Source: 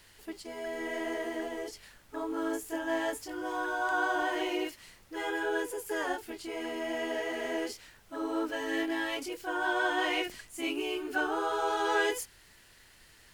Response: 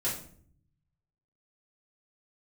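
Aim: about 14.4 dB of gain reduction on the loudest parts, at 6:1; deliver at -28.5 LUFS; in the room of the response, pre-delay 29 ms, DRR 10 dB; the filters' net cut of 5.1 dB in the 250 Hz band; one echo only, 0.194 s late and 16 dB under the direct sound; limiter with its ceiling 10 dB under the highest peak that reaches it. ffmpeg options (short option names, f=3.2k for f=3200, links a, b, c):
-filter_complex "[0:a]equalizer=f=250:t=o:g=-8,acompressor=threshold=-42dB:ratio=6,alimiter=level_in=16.5dB:limit=-24dB:level=0:latency=1,volume=-16.5dB,aecho=1:1:194:0.158,asplit=2[a][b];[1:a]atrim=start_sample=2205,adelay=29[c];[b][c]afir=irnorm=-1:irlink=0,volume=-16dB[d];[a][d]amix=inputs=2:normalize=0,volume=20.5dB"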